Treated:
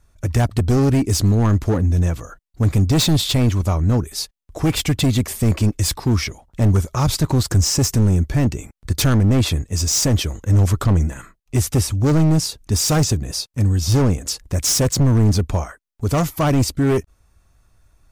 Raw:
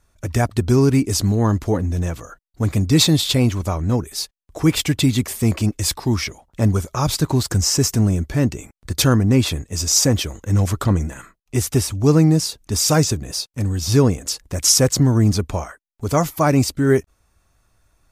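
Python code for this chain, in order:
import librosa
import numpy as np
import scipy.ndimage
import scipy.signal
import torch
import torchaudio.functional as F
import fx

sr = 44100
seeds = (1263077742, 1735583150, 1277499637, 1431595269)

y = np.clip(x, -10.0 ** (-15.0 / 20.0), 10.0 ** (-15.0 / 20.0))
y = fx.low_shelf(y, sr, hz=160.0, db=7.0)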